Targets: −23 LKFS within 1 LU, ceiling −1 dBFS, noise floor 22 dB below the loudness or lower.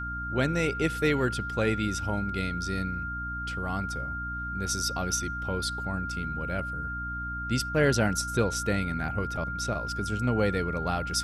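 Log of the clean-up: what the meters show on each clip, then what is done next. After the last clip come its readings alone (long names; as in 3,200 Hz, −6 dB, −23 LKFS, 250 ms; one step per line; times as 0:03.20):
mains hum 60 Hz; hum harmonics up to 300 Hz; level of the hum −35 dBFS; interfering tone 1,400 Hz; level of the tone −33 dBFS; integrated loudness −29.0 LKFS; sample peak −12.0 dBFS; target loudness −23.0 LKFS
→ hum removal 60 Hz, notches 5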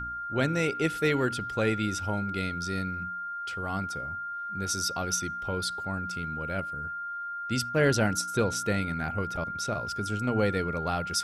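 mains hum none found; interfering tone 1,400 Hz; level of the tone −33 dBFS
→ notch filter 1,400 Hz, Q 30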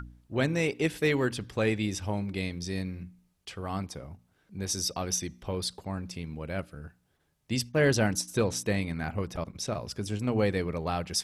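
interfering tone none found; integrated loudness −30.5 LKFS; sample peak −13.0 dBFS; target loudness −23.0 LKFS
→ level +7.5 dB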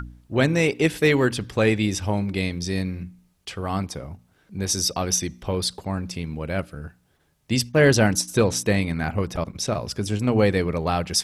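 integrated loudness −23.0 LKFS; sample peak −5.5 dBFS; background noise floor −64 dBFS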